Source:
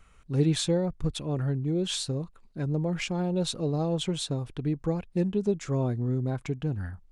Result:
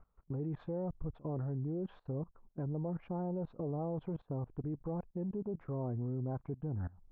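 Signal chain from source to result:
transistor ladder low-pass 1,200 Hz, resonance 30%
output level in coarse steps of 21 dB
level +5.5 dB

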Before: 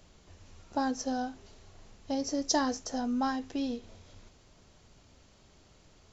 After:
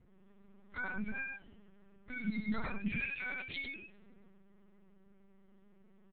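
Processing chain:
frequency axis turned over on the octave scale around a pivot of 1,100 Hz
0:02.87–0:03.64: high shelf with overshoot 1,700 Hz +11.5 dB, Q 3
brickwall limiter −22 dBFS, peak gain reduction 10.5 dB
low-pass that shuts in the quiet parts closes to 1,800 Hz, open at −31 dBFS
single-tap delay 98 ms −4 dB
linear-prediction vocoder at 8 kHz pitch kept
level −4.5 dB

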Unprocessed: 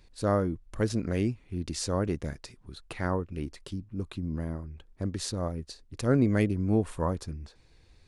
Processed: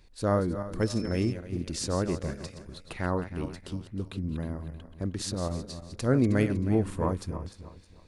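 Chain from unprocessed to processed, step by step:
feedback delay that plays each chunk backwards 157 ms, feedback 56%, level −10 dB
0:00.80–0:01.31: steady tone 5,300 Hz −47 dBFS

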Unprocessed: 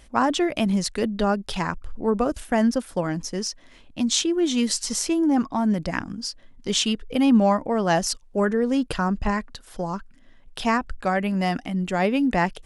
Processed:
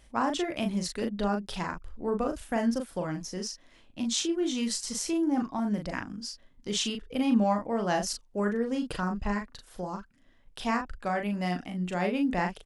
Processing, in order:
double-tracking delay 39 ms −5 dB
level −8 dB

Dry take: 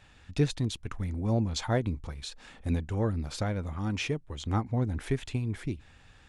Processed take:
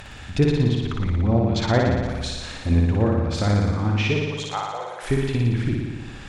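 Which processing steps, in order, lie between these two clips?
0:01.43–0:02.23: high-shelf EQ 3,900 Hz +8.5 dB
in parallel at +1 dB: upward compression, threshold −32 dBFS
0:04.22–0:05.03: on the sum: Butterworth high-pass 520 Hz 36 dB per octave
treble cut that deepens with the level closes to 2,800 Hz, closed at −20 dBFS
flutter between parallel walls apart 10 metres, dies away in 1.4 s

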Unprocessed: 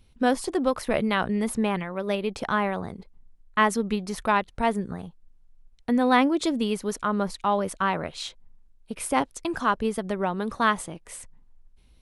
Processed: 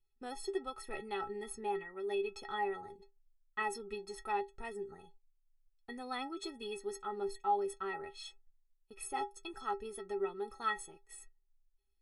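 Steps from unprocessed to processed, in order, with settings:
noise gate −45 dBFS, range −11 dB
stiff-string resonator 390 Hz, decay 0.21 s, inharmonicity 0.03
level +1 dB

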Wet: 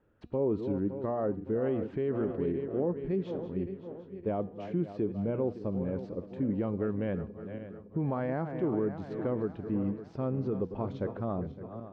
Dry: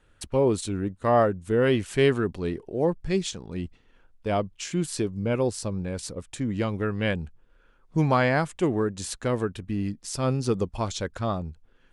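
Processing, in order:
feedback delay that plays each chunk backwards 281 ms, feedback 68%, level −13 dB
brickwall limiter −20 dBFS, peak gain reduction 11 dB
resonant band-pass 320 Hz, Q 0.61
high-frequency loss of the air 240 metres
hum removal 241.4 Hz, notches 33

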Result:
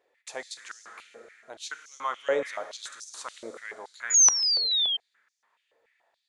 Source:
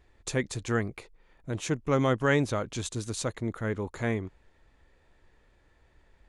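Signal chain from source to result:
four-comb reverb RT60 2.6 s, combs from 27 ms, DRR 8 dB
sound drawn into the spectrogram fall, 0:04.10–0:04.97, 3,100–7,000 Hz −20 dBFS
high-pass on a step sequencer 7 Hz 510–5,700 Hz
level −7 dB

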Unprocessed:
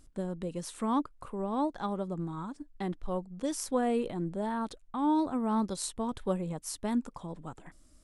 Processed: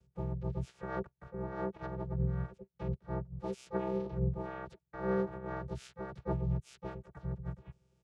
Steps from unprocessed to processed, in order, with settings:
channel vocoder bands 8, square 129 Hz
pitch-shifted copies added −12 semitones −1 dB, +3 semitones −15 dB, +5 semitones −4 dB
level −7 dB

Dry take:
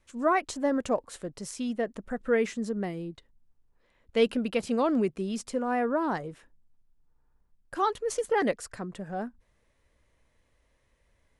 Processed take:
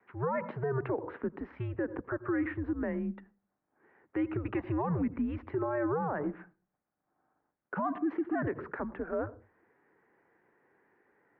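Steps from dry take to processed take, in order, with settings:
on a send at −23 dB: convolution reverb RT60 0.35 s, pre-delay 76 ms
on the sum: downward compressor 5 to 1, threshold −27 dBFS, peak gain reduction 9 dB
single-sideband voice off tune −140 Hz 340–2,100 Hz
0:04.54–0:04.95: comb filter 1.1 ms, depth 46%
brickwall limiter −31 dBFS, peak gain reduction 10.5 dB
level +7 dB

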